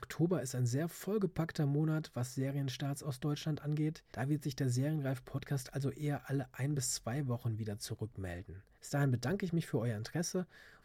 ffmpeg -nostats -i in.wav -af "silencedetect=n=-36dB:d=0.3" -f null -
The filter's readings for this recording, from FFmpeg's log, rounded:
silence_start: 8.37
silence_end: 8.92 | silence_duration: 0.55
silence_start: 10.43
silence_end: 10.84 | silence_duration: 0.42